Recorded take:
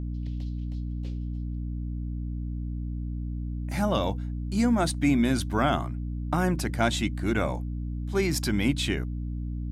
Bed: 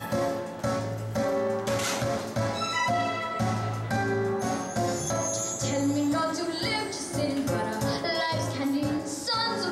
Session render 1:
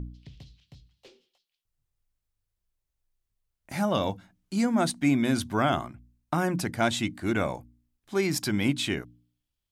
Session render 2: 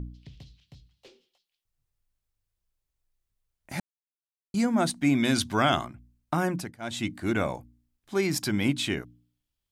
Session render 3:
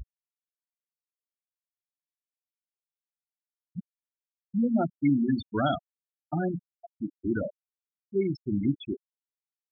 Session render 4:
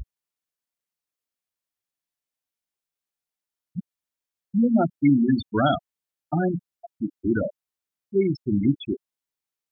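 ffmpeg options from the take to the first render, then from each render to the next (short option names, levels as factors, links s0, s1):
-af "bandreject=f=60:t=h:w=4,bandreject=f=120:t=h:w=4,bandreject=f=180:t=h:w=4,bandreject=f=240:t=h:w=4,bandreject=f=300:t=h:w=4"
-filter_complex "[0:a]asettb=1/sr,asplit=3[s0][s1][s2];[s0]atrim=end=5.154[s3];[s1]atrim=start=5.15:end=5.85,asetpts=PTS-STARTPTS,afade=t=in:d=0.004:c=qsin,afade=t=out:st=0.696:d=0.004:c=qsin,equalizer=f=4400:w=0.46:g=7.5[s4];[s2]atrim=start=5.846[s5];[s3][s4]acrossfade=d=0.004:c1=hsin:c2=qsin[s6];[s6][s5]acrossfade=d=0.004:c1=qsin:c2=hsin,asplit=4[s7][s8][s9][s10];[s7]atrim=end=3.8,asetpts=PTS-STARTPTS,afade=t=out:st=3.796:d=0.004:c=hsin[s11];[s8]atrim=start=3.8:end=4.54,asetpts=PTS-STARTPTS,volume=0[s12];[s9]atrim=start=4.54:end=6.78,asetpts=PTS-STARTPTS,afade=t=in:d=0.004:c=hsin,afade=t=out:st=1.93:d=0.31:silence=0.0749894[s13];[s10]atrim=start=6.78,asetpts=PTS-STARTPTS,afade=t=in:d=0.31:silence=0.0749894[s14];[s11][s12][s13][s14]concat=n=4:v=0:a=1"
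-af "afftfilt=real='re*gte(hypot(re,im),0.2)':imag='im*gte(hypot(re,im),0.2)':win_size=1024:overlap=0.75,equalizer=f=1100:t=o:w=0.35:g=-10"
-af "volume=1.88"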